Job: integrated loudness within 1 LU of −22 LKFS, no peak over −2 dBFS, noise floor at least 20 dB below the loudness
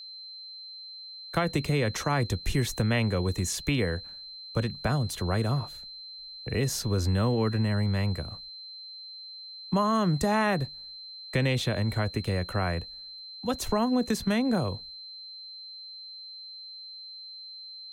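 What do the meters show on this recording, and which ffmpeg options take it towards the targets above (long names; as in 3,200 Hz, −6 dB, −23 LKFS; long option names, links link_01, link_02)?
interfering tone 4,100 Hz; level of the tone −41 dBFS; integrated loudness −28.5 LKFS; sample peak −12.5 dBFS; target loudness −22.0 LKFS
→ -af "bandreject=frequency=4100:width=30"
-af "volume=6.5dB"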